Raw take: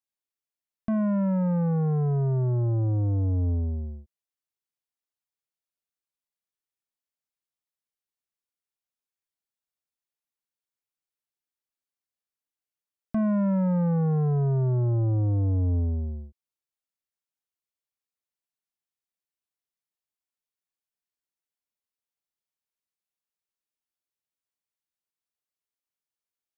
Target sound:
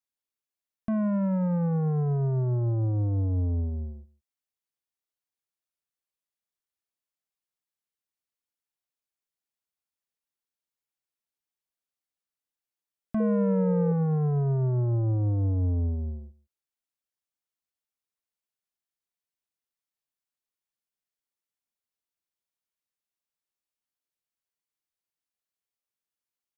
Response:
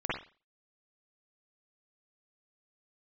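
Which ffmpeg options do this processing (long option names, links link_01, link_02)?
-filter_complex "[0:a]asettb=1/sr,asplit=3[link_01][link_02][link_03];[link_01]atrim=end=13.204[link_04];[link_02]atrim=start=13.2:end=13.92,asetpts=PTS-STARTPTS,afade=type=in:duration=0.004:curve=qsin,afade=type=out:start_time=0.716:duration=0.004:curve=qsin,aeval=exprs='val(0)+0.0501*sin(2*PI*470*n/s)':channel_layout=same[link_05];[link_03]atrim=start=13.916[link_06];[link_04][link_05]acrossfade=duration=0.004:curve1=hsin:curve2=qsin[link_07];[link_07][link_06]acrossfade=duration=0.004:curve1=qsin:curve2=hsin,aecho=1:1:151:0.0841,volume=-1.5dB"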